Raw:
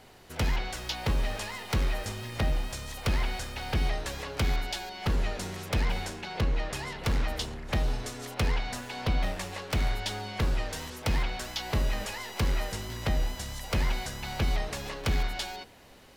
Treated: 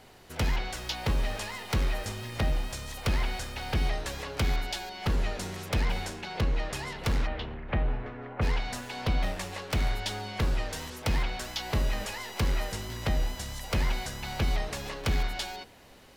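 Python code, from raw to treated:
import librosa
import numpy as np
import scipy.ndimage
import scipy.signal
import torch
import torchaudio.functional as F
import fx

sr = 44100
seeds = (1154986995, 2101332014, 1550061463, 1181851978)

y = fx.lowpass(x, sr, hz=fx.line((7.26, 3300.0), (8.41, 1900.0)), slope=24, at=(7.26, 8.41), fade=0.02)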